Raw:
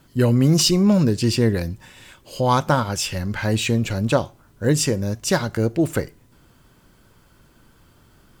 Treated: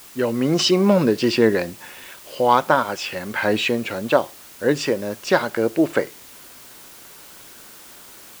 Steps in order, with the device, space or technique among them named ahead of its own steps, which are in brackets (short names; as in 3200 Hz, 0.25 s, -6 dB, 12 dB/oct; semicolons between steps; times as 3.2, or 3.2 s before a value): dictaphone (BPF 340–3200 Hz; AGC gain up to 8 dB; wow and flutter; white noise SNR 22 dB)